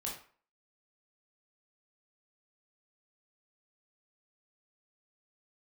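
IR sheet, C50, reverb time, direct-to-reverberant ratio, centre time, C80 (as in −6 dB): 5.0 dB, 0.45 s, −3.5 dB, 33 ms, 10.5 dB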